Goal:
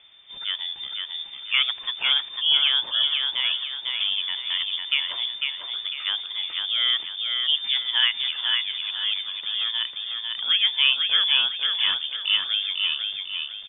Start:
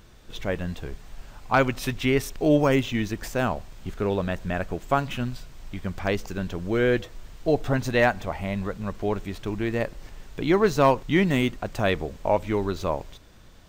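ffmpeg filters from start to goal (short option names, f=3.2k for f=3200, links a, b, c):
-filter_complex "[0:a]acrossover=split=2700[a][b];[b]acompressor=threshold=-48dB:ratio=4:attack=1:release=60[c];[a][c]amix=inputs=2:normalize=0,aecho=1:1:499|998|1497|1996|2495:0.631|0.246|0.096|0.0374|0.0146,lowpass=f=3.1k:t=q:w=0.5098,lowpass=f=3.1k:t=q:w=0.6013,lowpass=f=3.1k:t=q:w=0.9,lowpass=f=3.1k:t=q:w=2.563,afreqshift=-3600,volume=-1.5dB"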